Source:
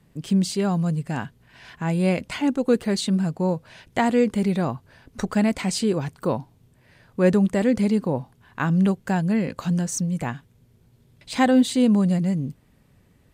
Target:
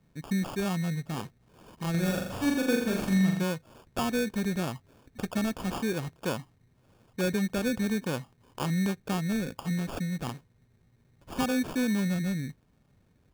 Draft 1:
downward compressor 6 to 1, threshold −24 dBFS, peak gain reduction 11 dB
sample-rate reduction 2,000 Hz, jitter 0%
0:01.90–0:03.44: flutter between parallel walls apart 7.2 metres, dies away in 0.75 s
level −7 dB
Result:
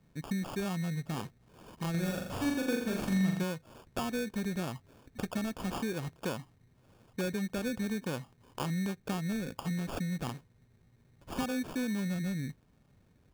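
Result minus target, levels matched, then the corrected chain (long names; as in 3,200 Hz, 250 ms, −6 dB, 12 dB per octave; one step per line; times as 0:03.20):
downward compressor: peak gain reduction +6 dB
downward compressor 6 to 1, threshold −16.5 dBFS, peak gain reduction 5 dB
sample-rate reduction 2,000 Hz, jitter 0%
0:01.90–0:03.44: flutter between parallel walls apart 7.2 metres, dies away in 0.75 s
level −7 dB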